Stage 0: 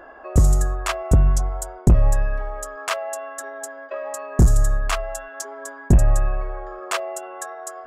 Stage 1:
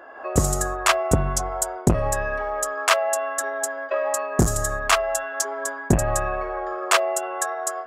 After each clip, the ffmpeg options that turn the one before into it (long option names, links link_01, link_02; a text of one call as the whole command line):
ffmpeg -i in.wav -af "highpass=frequency=360:poles=1,dynaudnorm=framelen=110:gausssize=3:maxgain=7.5dB" out.wav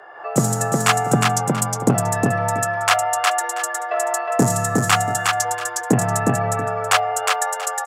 ffmpeg -i in.wav -af "afreqshift=71,aecho=1:1:361|685:0.708|0.158,volume=1.5dB" out.wav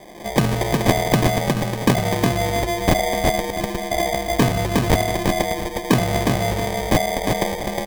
ffmpeg -i in.wav -af "acrusher=samples=32:mix=1:aa=0.000001" out.wav